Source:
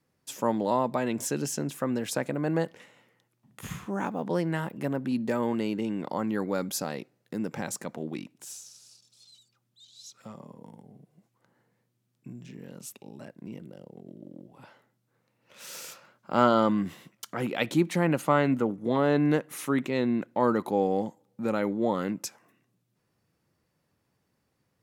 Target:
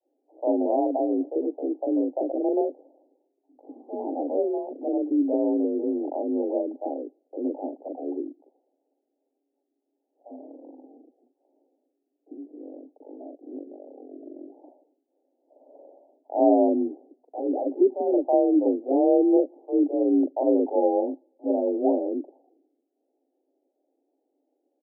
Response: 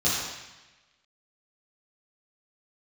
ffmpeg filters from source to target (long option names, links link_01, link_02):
-filter_complex "[0:a]asuperpass=centerf=410:order=20:qfactor=0.75,afreqshift=43,acrossover=split=550[link_01][link_02];[link_01]adelay=40[link_03];[link_03][link_02]amix=inputs=2:normalize=0,volume=7dB"